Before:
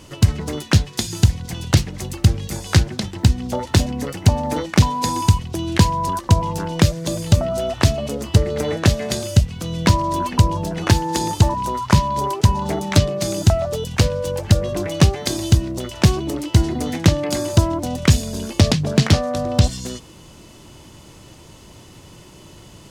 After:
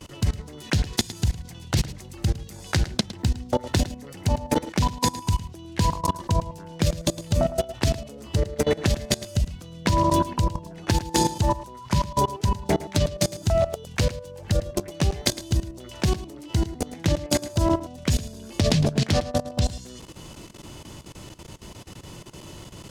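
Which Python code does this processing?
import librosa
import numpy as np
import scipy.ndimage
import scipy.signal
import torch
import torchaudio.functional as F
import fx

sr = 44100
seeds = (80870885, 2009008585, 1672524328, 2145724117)

p1 = fx.dynamic_eq(x, sr, hz=1200.0, q=3.9, threshold_db=-40.0, ratio=4.0, max_db=-4)
p2 = fx.level_steps(p1, sr, step_db=22)
p3 = p2 + fx.echo_single(p2, sr, ms=109, db=-15.0, dry=0)
y = F.gain(torch.from_numpy(p3), 3.0).numpy()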